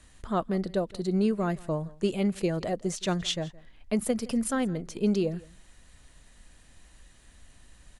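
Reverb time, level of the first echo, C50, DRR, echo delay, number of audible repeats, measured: no reverb audible, −22.5 dB, no reverb audible, no reverb audible, 166 ms, 1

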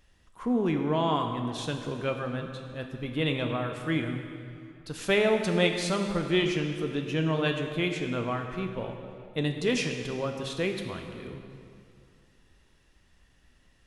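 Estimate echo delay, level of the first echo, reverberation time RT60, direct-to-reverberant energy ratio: no echo audible, no echo audible, 2.4 s, 4.0 dB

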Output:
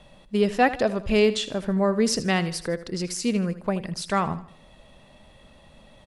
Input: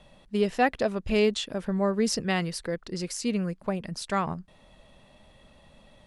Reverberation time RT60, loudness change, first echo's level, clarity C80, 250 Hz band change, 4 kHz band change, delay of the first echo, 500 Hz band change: no reverb audible, +3.5 dB, −15.0 dB, no reverb audible, +3.5 dB, +3.5 dB, 79 ms, +3.5 dB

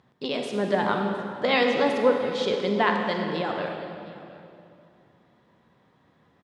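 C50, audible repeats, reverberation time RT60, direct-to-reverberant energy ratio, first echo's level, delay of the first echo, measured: 3.0 dB, 1, 2.6 s, 2.5 dB, −20.5 dB, 713 ms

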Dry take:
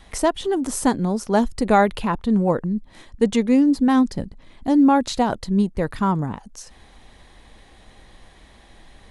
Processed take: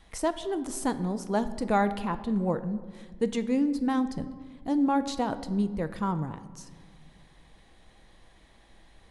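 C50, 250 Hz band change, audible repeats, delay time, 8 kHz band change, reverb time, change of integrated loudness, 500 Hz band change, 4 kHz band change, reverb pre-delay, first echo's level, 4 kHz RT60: 13.5 dB, −9.0 dB, no echo audible, no echo audible, −9.0 dB, 1.7 s, −9.0 dB, −8.5 dB, −9.0 dB, 6 ms, no echo audible, 0.95 s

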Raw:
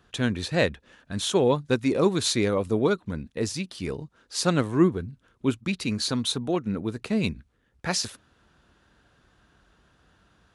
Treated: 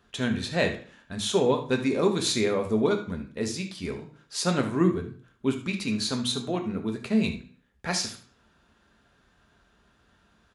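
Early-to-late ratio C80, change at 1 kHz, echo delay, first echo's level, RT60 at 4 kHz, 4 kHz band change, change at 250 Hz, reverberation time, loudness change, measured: 14.0 dB, −1.0 dB, 73 ms, −13.0 dB, 0.40 s, −1.0 dB, −1.0 dB, 0.45 s, −1.0 dB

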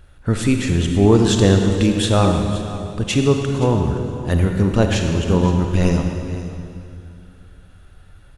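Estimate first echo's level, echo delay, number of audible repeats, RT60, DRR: −15.5 dB, 522 ms, 1, 2.4 s, 3.5 dB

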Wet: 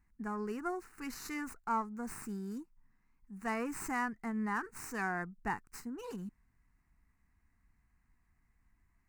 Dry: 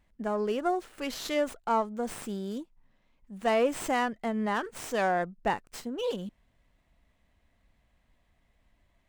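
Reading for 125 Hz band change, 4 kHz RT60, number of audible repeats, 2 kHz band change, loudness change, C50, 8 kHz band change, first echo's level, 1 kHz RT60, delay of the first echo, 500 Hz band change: −4.5 dB, no reverb audible, no echo audible, −4.5 dB, −8.0 dB, no reverb audible, −5.0 dB, no echo audible, no reverb audible, no echo audible, −14.5 dB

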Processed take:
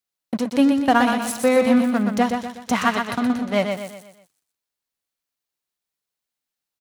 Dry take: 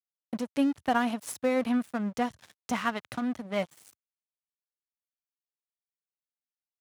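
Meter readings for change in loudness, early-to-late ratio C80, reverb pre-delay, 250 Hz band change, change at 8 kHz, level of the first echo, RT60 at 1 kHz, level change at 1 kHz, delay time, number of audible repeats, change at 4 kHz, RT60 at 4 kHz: +10.5 dB, no reverb audible, no reverb audible, +10.5 dB, +10.5 dB, −5.5 dB, no reverb audible, +10.0 dB, 123 ms, 5, +11.0 dB, no reverb audible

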